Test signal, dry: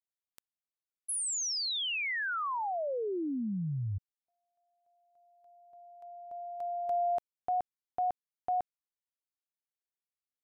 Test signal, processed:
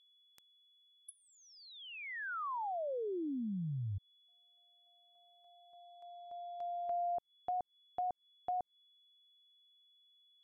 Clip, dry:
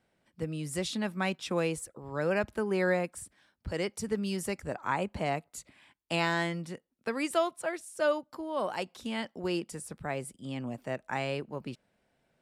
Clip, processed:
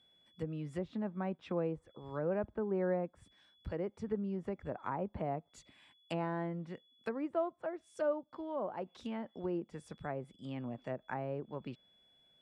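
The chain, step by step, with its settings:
steady tone 3,400 Hz −62 dBFS
treble cut that deepens with the level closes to 870 Hz, closed at −29.5 dBFS
level −4.5 dB

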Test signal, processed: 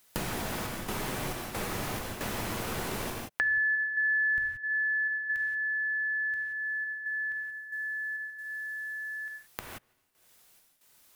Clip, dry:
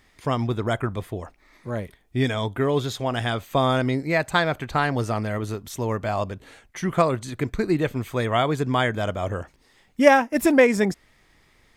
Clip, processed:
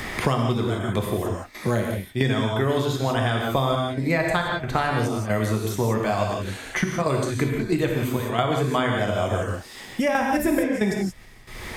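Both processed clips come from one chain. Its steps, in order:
parametric band 12,000 Hz +4 dB 0.6 octaves
gate pattern "xxx.xx.xx.xxxx" 68 BPM −12 dB
reverb whose tail is shaped and stops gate 200 ms flat, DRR 0 dB
multiband upward and downward compressor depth 100%
level −2 dB

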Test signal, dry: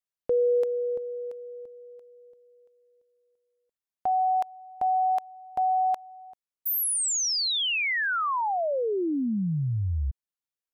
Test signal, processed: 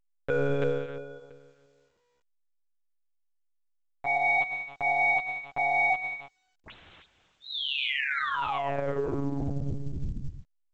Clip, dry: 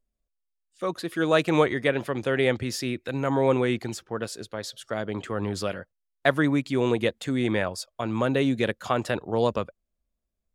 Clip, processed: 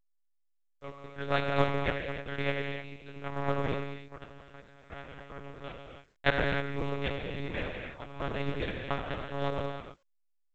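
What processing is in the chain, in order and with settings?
noise gate −45 dBFS, range −19 dB
power curve on the samples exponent 2
reverb whose tail is shaped and stops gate 340 ms flat, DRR 0.5 dB
one-pitch LPC vocoder at 8 kHz 140 Hz
A-law companding 128 kbit/s 16,000 Hz

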